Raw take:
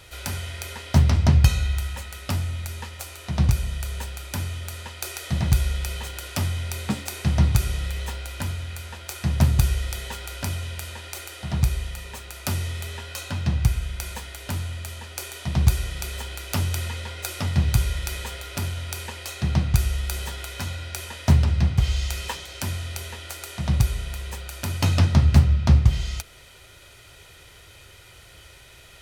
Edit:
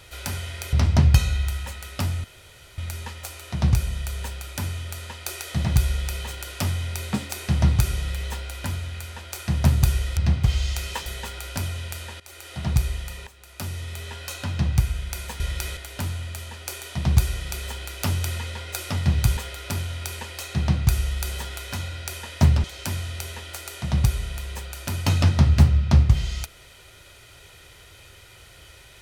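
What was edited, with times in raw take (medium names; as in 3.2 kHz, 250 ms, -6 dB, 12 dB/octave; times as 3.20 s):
0.73–1.03 s: delete
2.54 s: insert room tone 0.54 s
11.07–11.42 s: fade in, from -18.5 dB
12.14–13.08 s: fade in, from -15 dB
17.87–18.24 s: move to 14.27 s
21.51–22.40 s: move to 9.93 s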